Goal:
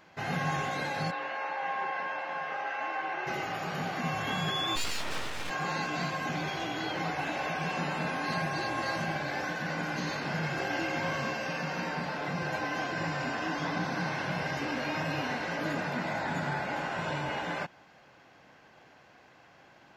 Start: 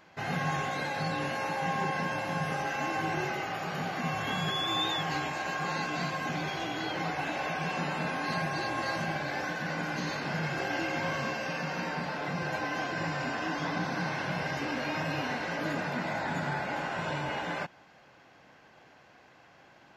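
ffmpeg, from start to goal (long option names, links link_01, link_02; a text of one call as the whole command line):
ffmpeg -i in.wav -filter_complex "[0:a]asplit=3[link_01][link_02][link_03];[link_01]afade=type=out:start_time=1.1:duration=0.02[link_04];[link_02]highpass=600,lowpass=2600,afade=type=in:start_time=1.1:duration=0.02,afade=type=out:start_time=3.26:duration=0.02[link_05];[link_03]afade=type=in:start_time=3.26:duration=0.02[link_06];[link_04][link_05][link_06]amix=inputs=3:normalize=0,asplit=3[link_07][link_08][link_09];[link_07]afade=type=out:start_time=4.75:duration=0.02[link_10];[link_08]aeval=exprs='abs(val(0))':channel_layout=same,afade=type=in:start_time=4.75:duration=0.02,afade=type=out:start_time=5.49:duration=0.02[link_11];[link_09]afade=type=in:start_time=5.49:duration=0.02[link_12];[link_10][link_11][link_12]amix=inputs=3:normalize=0" out.wav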